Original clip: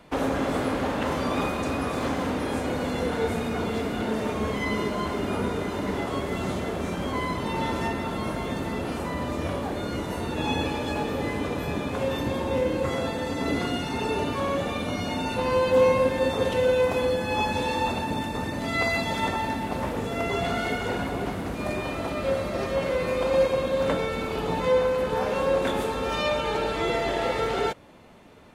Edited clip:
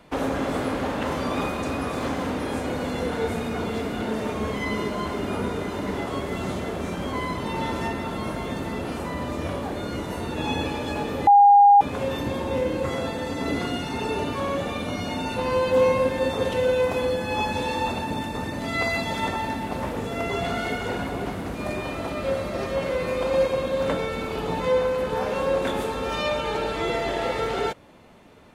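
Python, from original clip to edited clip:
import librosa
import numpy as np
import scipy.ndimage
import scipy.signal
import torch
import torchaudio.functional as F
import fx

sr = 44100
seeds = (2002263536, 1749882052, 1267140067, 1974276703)

y = fx.edit(x, sr, fx.bleep(start_s=11.27, length_s=0.54, hz=811.0, db=-9.5), tone=tone)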